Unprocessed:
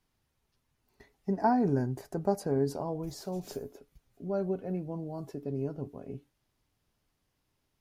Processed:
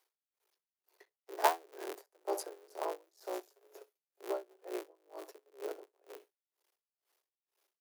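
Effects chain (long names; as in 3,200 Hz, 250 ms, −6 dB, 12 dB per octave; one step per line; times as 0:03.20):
sub-harmonics by changed cycles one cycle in 3, muted
Butterworth high-pass 350 Hz 72 dB per octave
high-shelf EQ 12,000 Hz +9.5 dB
repeating echo 66 ms, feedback 30%, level −20 dB
tremolo with a sine in dB 2.1 Hz, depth 32 dB
level +3 dB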